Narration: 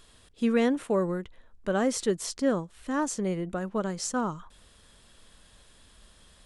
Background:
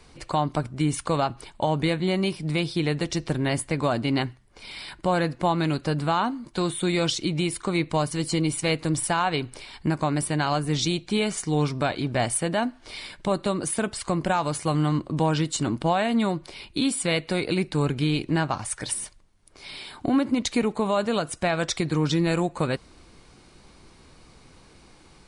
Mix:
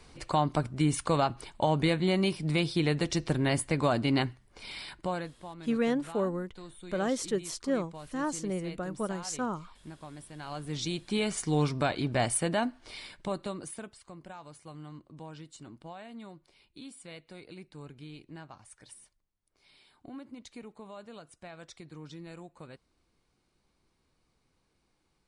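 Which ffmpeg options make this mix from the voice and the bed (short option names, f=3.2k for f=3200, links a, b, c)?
-filter_complex "[0:a]adelay=5250,volume=-4dB[a];[1:a]volume=15.5dB,afade=t=out:st=4.72:d=0.62:silence=0.112202,afade=t=in:st=10.35:d=1.09:silence=0.125893,afade=t=out:st=12.49:d=1.51:silence=0.112202[b];[a][b]amix=inputs=2:normalize=0"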